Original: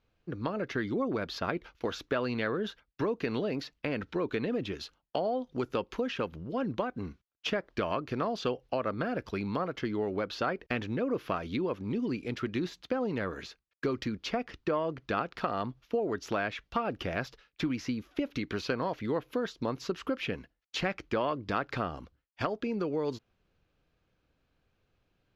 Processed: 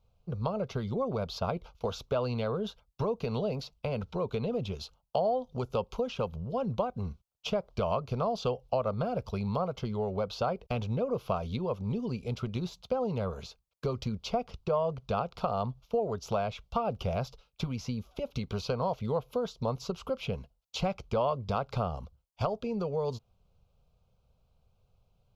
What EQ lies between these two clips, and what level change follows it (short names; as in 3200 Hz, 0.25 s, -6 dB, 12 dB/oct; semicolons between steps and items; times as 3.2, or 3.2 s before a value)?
low shelf 450 Hz +7.5 dB; fixed phaser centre 740 Hz, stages 4; +1.5 dB